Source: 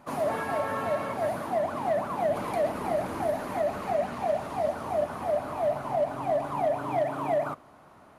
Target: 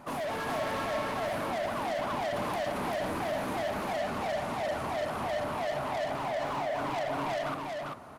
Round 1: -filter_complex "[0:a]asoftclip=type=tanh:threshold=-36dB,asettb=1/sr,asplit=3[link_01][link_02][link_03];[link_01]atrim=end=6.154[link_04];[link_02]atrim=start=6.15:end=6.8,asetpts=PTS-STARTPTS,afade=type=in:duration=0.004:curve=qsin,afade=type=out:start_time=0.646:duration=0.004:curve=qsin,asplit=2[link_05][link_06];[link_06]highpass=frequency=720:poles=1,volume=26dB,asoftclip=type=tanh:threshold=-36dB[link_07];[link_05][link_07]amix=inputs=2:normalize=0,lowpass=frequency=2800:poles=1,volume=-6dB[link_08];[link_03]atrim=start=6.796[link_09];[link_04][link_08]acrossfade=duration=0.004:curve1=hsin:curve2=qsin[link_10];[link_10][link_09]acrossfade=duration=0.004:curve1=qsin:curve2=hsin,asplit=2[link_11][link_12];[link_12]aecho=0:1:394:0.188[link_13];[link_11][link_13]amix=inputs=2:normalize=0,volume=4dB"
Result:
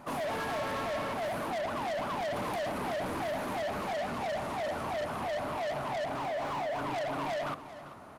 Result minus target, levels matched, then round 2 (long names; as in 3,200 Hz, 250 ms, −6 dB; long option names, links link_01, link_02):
echo-to-direct −11.5 dB
-filter_complex "[0:a]asoftclip=type=tanh:threshold=-36dB,asettb=1/sr,asplit=3[link_01][link_02][link_03];[link_01]atrim=end=6.154[link_04];[link_02]atrim=start=6.15:end=6.8,asetpts=PTS-STARTPTS,afade=type=in:duration=0.004:curve=qsin,afade=type=out:start_time=0.646:duration=0.004:curve=qsin,asplit=2[link_05][link_06];[link_06]highpass=frequency=720:poles=1,volume=26dB,asoftclip=type=tanh:threshold=-36dB[link_07];[link_05][link_07]amix=inputs=2:normalize=0,lowpass=frequency=2800:poles=1,volume=-6dB[link_08];[link_03]atrim=start=6.796[link_09];[link_04][link_08]acrossfade=duration=0.004:curve1=hsin:curve2=qsin[link_10];[link_10][link_09]acrossfade=duration=0.004:curve1=qsin:curve2=hsin,asplit=2[link_11][link_12];[link_12]aecho=0:1:394:0.708[link_13];[link_11][link_13]amix=inputs=2:normalize=0,volume=4dB"